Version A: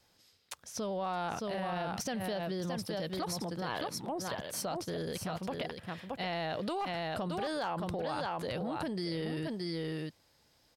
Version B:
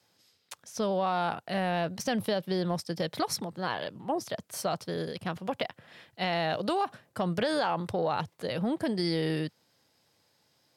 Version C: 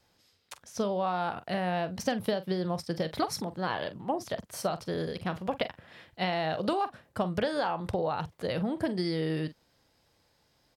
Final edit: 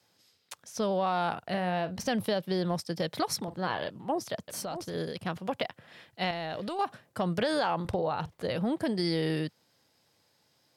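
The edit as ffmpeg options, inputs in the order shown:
-filter_complex "[2:a]asplit=3[s0][s1][s2];[0:a]asplit=2[s3][s4];[1:a]asplit=6[s5][s6][s7][s8][s9][s10];[s5]atrim=end=1.432[s11];[s0]atrim=start=1.428:end=2.062[s12];[s6]atrim=start=2.058:end=3.482[s13];[s1]atrim=start=3.478:end=3.902[s14];[s7]atrim=start=3.898:end=4.482[s15];[s3]atrim=start=4.478:end=4.942[s16];[s8]atrim=start=4.938:end=6.312[s17];[s4]atrim=start=6.308:end=6.792[s18];[s9]atrim=start=6.788:end=7.852[s19];[s2]atrim=start=7.848:end=8.562[s20];[s10]atrim=start=8.558[s21];[s11][s12]acrossfade=d=0.004:c1=hsin:c2=hsin[s22];[s22][s13]acrossfade=d=0.004:c1=hsin:c2=hsin[s23];[s23][s14]acrossfade=d=0.004:c1=hsin:c2=hsin[s24];[s24][s15]acrossfade=d=0.004:c1=hsin:c2=hsin[s25];[s25][s16]acrossfade=d=0.004:c1=hsin:c2=hsin[s26];[s26][s17]acrossfade=d=0.004:c1=hsin:c2=hsin[s27];[s27][s18]acrossfade=d=0.004:c1=hsin:c2=hsin[s28];[s28][s19]acrossfade=d=0.004:c1=hsin:c2=hsin[s29];[s29][s20]acrossfade=d=0.004:c1=hsin:c2=hsin[s30];[s30][s21]acrossfade=d=0.004:c1=hsin:c2=hsin"

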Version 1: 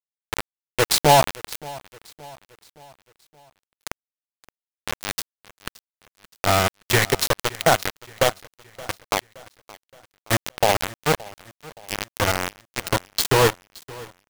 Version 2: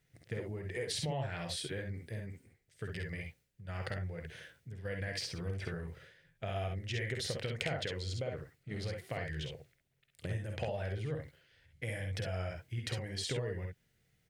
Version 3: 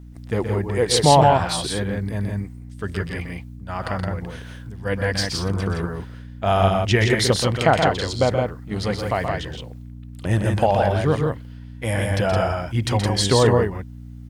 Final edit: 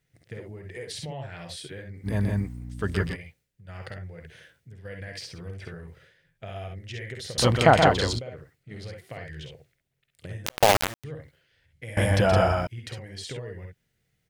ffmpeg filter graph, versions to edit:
-filter_complex "[2:a]asplit=3[s0][s1][s2];[1:a]asplit=5[s3][s4][s5][s6][s7];[s3]atrim=end=2.09[s8];[s0]atrim=start=2.03:end=3.17[s9];[s4]atrim=start=3.11:end=7.382[s10];[s1]atrim=start=7.378:end=8.192[s11];[s5]atrim=start=8.188:end=10.462[s12];[0:a]atrim=start=10.458:end=11.042[s13];[s6]atrim=start=11.038:end=11.972[s14];[s2]atrim=start=11.968:end=12.672[s15];[s7]atrim=start=12.668[s16];[s8][s9]acrossfade=d=0.06:c1=tri:c2=tri[s17];[s17][s10]acrossfade=d=0.06:c1=tri:c2=tri[s18];[s18][s11]acrossfade=d=0.004:c1=hsin:c2=hsin[s19];[s19][s12]acrossfade=d=0.004:c1=hsin:c2=hsin[s20];[s20][s13]acrossfade=d=0.004:c1=hsin:c2=hsin[s21];[s21][s14]acrossfade=d=0.004:c1=hsin:c2=hsin[s22];[s22][s15]acrossfade=d=0.004:c1=hsin:c2=hsin[s23];[s23][s16]acrossfade=d=0.004:c1=hsin:c2=hsin"

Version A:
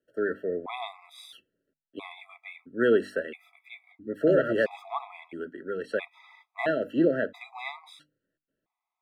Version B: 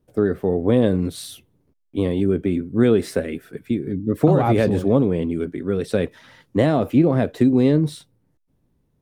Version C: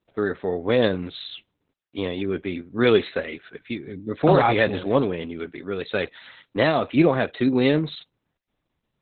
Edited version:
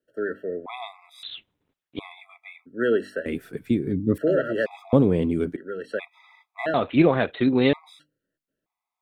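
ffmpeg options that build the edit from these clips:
-filter_complex "[2:a]asplit=2[s0][s1];[1:a]asplit=2[s2][s3];[0:a]asplit=5[s4][s5][s6][s7][s8];[s4]atrim=end=1.232[s9];[s0]atrim=start=1.228:end=1.992[s10];[s5]atrim=start=1.988:end=3.262[s11];[s2]atrim=start=3.258:end=4.182[s12];[s6]atrim=start=4.178:end=4.932[s13];[s3]atrim=start=4.928:end=5.562[s14];[s7]atrim=start=5.558:end=6.742[s15];[s1]atrim=start=6.738:end=7.732[s16];[s8]atrim=start=7.728[s17];[s9][s10]acrossfade=d=0.004:c1=hsin:c2=hsin[s18];[s18][s11]acrossfade=d=0.004:c1=hsin:c2=hsin[s19];[s19][s12]acrossfade=d=0.004:c1=hsin:c2=hsin[s20];[s20][s13]acrossfade=d=0.004:c1=hsin:c2=hsin[s21];[s21][s14]acrossfade=d=0.004:c1=hsin:c2=hsin[s22];[s22][s15]acrossfade=d=0.004:c1=hsin:c2=hsin[s23];[s23][s16]acrossfade=d=0.004:c1=hsin:c2=hsin[s24];[s24][s17]acrossfade=d=0.004:c1=hsin:c2=hsin"

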